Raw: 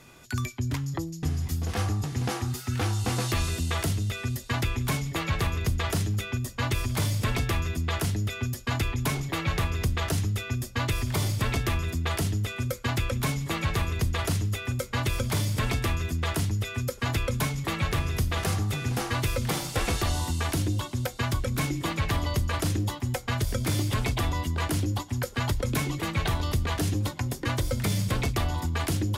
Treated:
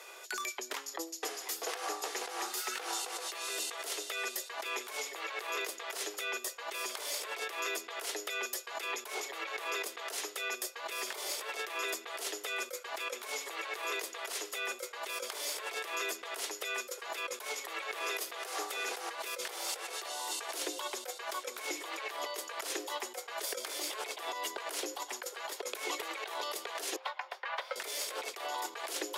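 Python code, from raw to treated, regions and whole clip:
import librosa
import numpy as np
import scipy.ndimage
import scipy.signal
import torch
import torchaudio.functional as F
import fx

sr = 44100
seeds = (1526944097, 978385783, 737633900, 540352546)

y = fx.chain(x, sr, fx.highpass(hz=720.0, slope=24),
    fx.air_absorb(metres=350.0), at=(26.96, 27.76))
y = scipy.signal.sosfilt(scipy.signal.butter(8, 400.0, 'highpass', fs=sr, output='sos'), y)
y = fx.over_compress(y, sr, threshold_db=-39.0, ratio=-1.0)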